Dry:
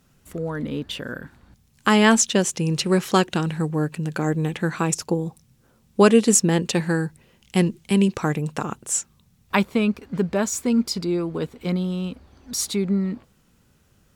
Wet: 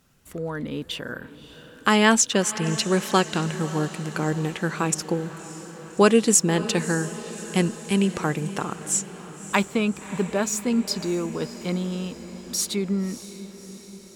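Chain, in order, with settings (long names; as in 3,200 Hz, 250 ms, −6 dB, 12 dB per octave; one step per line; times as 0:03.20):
low-shelf EQ 420 Hz −4 dB
on a send: feedback delay with all-pass diffusion 601 ms, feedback 62%, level −14.5 dB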